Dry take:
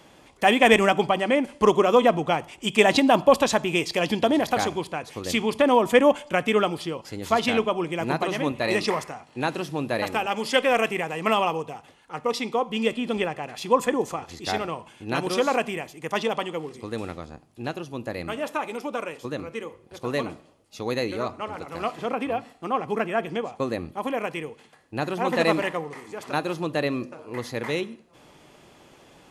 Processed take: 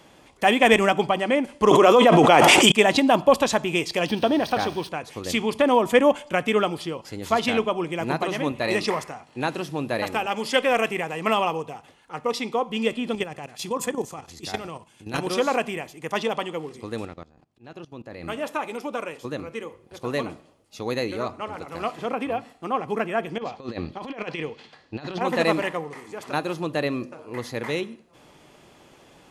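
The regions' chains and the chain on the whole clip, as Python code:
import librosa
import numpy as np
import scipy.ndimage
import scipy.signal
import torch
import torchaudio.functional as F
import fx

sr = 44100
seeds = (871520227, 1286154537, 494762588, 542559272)

y = fx.chain(x, sr, fx.highpass(hz=250.0, slope=12),
    fx.env_flatten(amount_pct=100), at=(1.71, 2.72))
y = fx.chain(y, sr, fx.crossing_spikes(level_db=-24.0),
    fx.savgol(points=15),
    fx.notch(hz=2100.0, q=11.0), at=(4.08, 4.89))
y = fx.chain(y, sr, fx.highpass(hz=49.0, slope=12),
    fx.level_steps(step_db=12),
    fx.bass_treble(bass_db=4, treble_db=8), at=(13.15, 15.19))
y = fx.chain(y, sr, fx.level_steps(step_db=19),
    fx.auto_swell(attack_ms=146.0),
    fx.air_absorb(metres=62.0), at=(17.05, 18.23))
y = fx.chain(y, sr, fx.lowpass_res(hz=4500.0, q=2.3),
    fx.over_compress(threshold_db=-31.0, ratio=-0.5), at=(23.38, 25.21))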